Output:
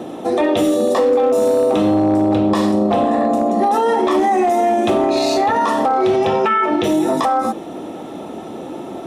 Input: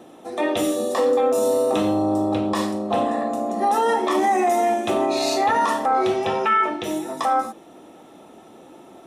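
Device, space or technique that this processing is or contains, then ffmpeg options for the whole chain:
mastering chain: -af "highpass=51,equalizer=frequency=3800:width_type=o:width=1.5:gain=4,acompressor=threshold=-21dB:ratio=3,tiltshelf=frequency=1100:gain=5,asoftclip=type=hard:threshold=-14.5dB,alimiter=level_in=20.5dB:limit=-1dB:release=50:level=0:latency=1,volume=-8dB"

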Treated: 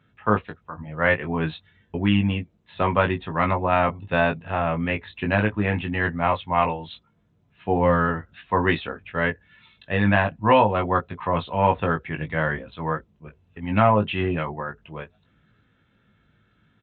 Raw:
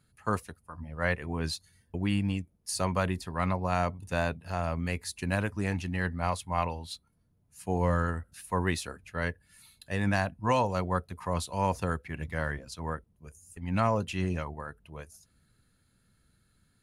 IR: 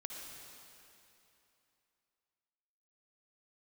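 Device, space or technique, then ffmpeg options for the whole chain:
Bluetooth headset: -filter_complex "[0:a]highpass=frequency=140:poles=1,asplit=2[link_01][link_02];[link_02]adelay=19,volume=-5dB[link_03];[link_01][link_03]amix=inputs=2:normalize=0,aresample=8000,aresample=44100,volume=8.5dB" -ar 16000 -c:a sbc -b:a 64k

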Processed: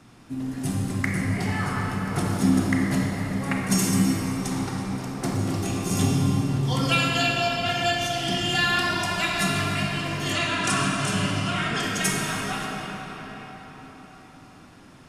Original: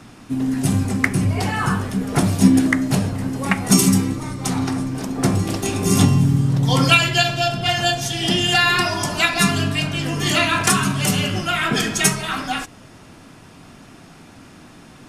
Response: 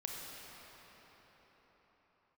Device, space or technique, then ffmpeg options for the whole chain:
cathedral: -filter_complex "[1:a]atrim=start_sample=2205[link_01];[0:a][link_01]afir=irnorm=-1:irlink=0,asettb=1/sr,asplit=3[link_02][link_03][link_04];[link_02]atrim=end=10.334[link_05];[link_03]atrim=start=10.33:end=11.83,asetpts=PTS-STARTPTS,afade=type=in:duration=0.004:curve=qsin,afade=type=out:start_time=1.496:duration=0.004:curve=qsin,lowpass=frequency=10000:width=0.5412,lowpass=frequency=10000:width=1.3066[link_06];[link_04]atrim=start=11.826[link_07];[link_05][link_06]acrossfade=duration=0.004:curve1=hsin:curve2=qsin[link_08];[link_08][link_07]acrossfade=duration=0.004:curve1=qsin:curve2=hsin,volume=-6dB"

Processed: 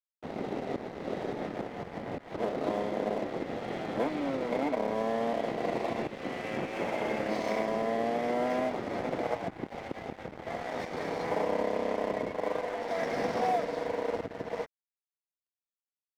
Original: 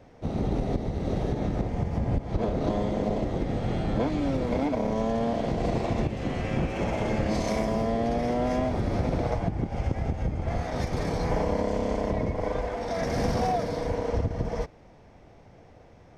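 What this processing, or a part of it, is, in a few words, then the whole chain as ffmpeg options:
pocket radio on a weak battery: -af "highpass=300,lowpass=3700,aeval=exprs='sgn(val(0))*max(abs(val(0))-0.00708,0)':channel_layout=same,equalizer=frequency=2000:width_type=o:width=0.2:gain=4"

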